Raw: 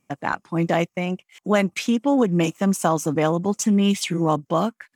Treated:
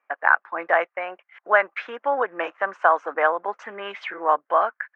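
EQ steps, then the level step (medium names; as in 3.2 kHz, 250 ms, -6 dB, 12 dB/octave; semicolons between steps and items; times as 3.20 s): high-pass 550 Hz 24 dB/octave; resonant low-pass 1.6 kHz, resonance Q 3.8; distance through air 130 m; +1.5 dB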